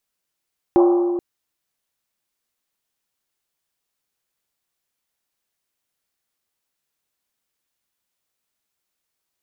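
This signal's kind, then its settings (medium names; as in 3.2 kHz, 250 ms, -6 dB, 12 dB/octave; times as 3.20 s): Risset drum length 0.43 s, pitch 350 Hz, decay 2.51 s, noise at 850 Hz, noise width 580 Hz, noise 10%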